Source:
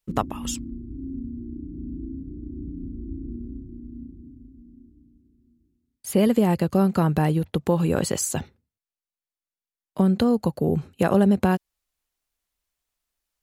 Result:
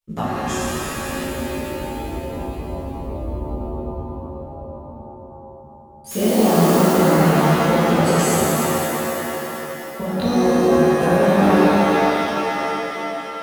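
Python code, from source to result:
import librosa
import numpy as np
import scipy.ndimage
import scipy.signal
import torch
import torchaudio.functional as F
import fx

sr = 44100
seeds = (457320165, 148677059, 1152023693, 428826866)

y = fx.chorus_voices(x, sr, voices=2, hz=0.78, base_ms=16, depth_ms=4.8, mix_pct=60)
y = fx.quant_dither(y, sr, seeds[0], bits=6, dither='triangular', at=(6.11, 6.87))
y = fx.rev_shimmer(y, sr, seeds[1], rt60_s=3.4, semitones=7, shimmer_db=-2, drr_db=-7.5)
y = y * librosa.db_to_amplitude(-1.5)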